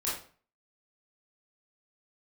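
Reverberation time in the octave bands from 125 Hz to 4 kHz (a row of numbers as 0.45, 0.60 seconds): 0.55, 0.45, 0.40, 0.40, 0.40, 0.35 seconds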